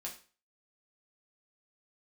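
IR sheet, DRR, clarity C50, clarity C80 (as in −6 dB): −2.5 dB, 10.0 dB, 15.0 dB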